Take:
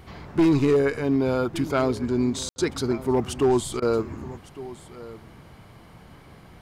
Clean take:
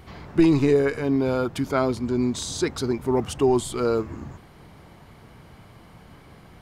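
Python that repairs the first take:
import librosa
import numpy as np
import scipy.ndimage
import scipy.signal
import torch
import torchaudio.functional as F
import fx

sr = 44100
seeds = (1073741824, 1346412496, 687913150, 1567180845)

y = fx.fix_declip(x, sr, threshold_db=-14.0)
y = fx.fix_ambience(y, sr, seeds[0], print_start_s=5.78, print_end_s=6.28, start_s=2.49, end_s=2.56)
y = fx.fix_interpolate(y, sr, at_s=(2.56, 3.8), length_ms=20.0)
y = fx.fix_echo_inverse(y, sr, delay_ms=1157, level_db=-18.0)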